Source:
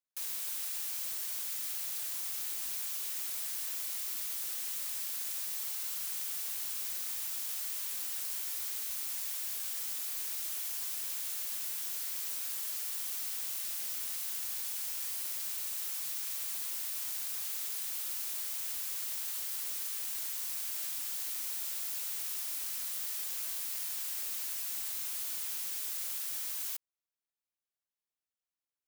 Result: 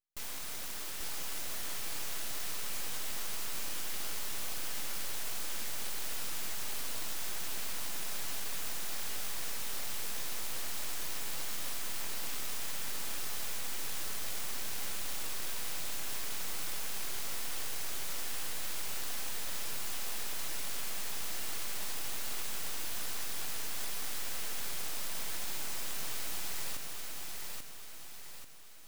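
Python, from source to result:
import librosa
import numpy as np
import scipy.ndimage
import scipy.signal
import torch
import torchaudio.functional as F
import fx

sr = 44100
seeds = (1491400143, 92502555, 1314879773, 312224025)

p1 = fx.peak_eq(x, sr, hz=13000.0, db=-7.0, octaves=0.26)
p2 = np.abs(p1)
y = p2 + fx.echo_feedback(p2, sr, ms=838, feedback_pct=47, wet_db=-3, dry=0)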